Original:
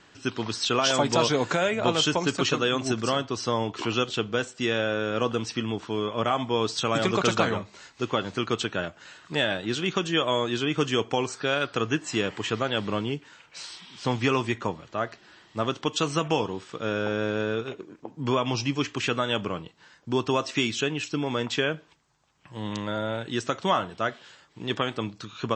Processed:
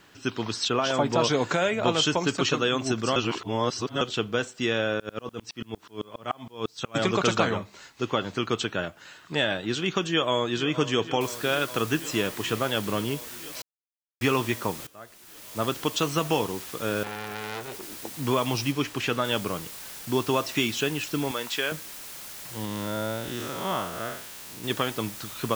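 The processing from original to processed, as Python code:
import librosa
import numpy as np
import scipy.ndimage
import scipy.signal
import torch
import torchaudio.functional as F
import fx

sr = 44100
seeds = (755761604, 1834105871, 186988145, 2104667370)

y = fx.high_shelf(x, sr, hz=3100.0, db=-11.0, at=(0.68, 1.24))
y = fx.tremolo_decay(y, sr, direction='swelling', hz=fx.line((4.98, 11.0), (6.94, 4.8)), depth_db=33, at=(4.98, 6.94), fade=0.02)
y = fx.echo_throw(y, sr, start_s=10.08, length_s=0.62, ms=470, feedback_pct=85, wet_db=-14.5)
y = fx.noise_floor_step(y, sr, seeds[0], at_s=11.21, before_db=-69, after_db=-41, tilt_db=0.0)
y = fx.transformer_sat(y, sr, knee_hz=3200.0, at=(17.03, 17.83))
y = fx.high_shelf(y, sr, hz=7200.0, db=-8.0, at=(18.72, 19.25))
y = fx.highpass(y, sr, hz=700.0, slope=6, at=(21.31, 21.72))
y = fx.spec_blur(y, sr, span_ms=162.0, at=(22.65, 24.64))
y = fx.edit(y, sr, fx.reverse_span(start_s=3.16, length_s=0.85),
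    fx.silence(start_s=13.62, length_s=0.59),
    fx.fade_in_from(start_s=14.87, length_s=0.77, curve='qua', floor_db=-18.5), tone=tone)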